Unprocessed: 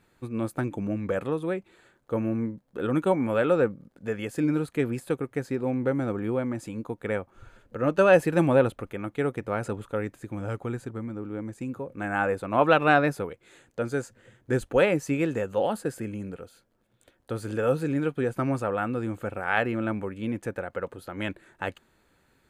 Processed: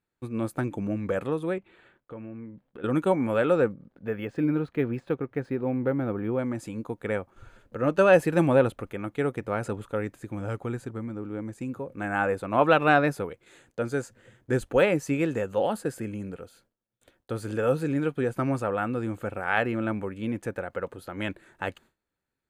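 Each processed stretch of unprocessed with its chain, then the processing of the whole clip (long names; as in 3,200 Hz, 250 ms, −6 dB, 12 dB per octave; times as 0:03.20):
0:01.58–0:02.84: high shelf with overshoot 4,200 Hz −11.5 dB, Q 1.5 + downward compressor 2.5 to 1, threshold −43 dBFS
0:03.73–0:06.39: high-frequency loss of the air 170 metres + linearly interpolated sample-rate reduction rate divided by 3×
whole clip: de-essing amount 60%; noise gate with hold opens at −49 dBFS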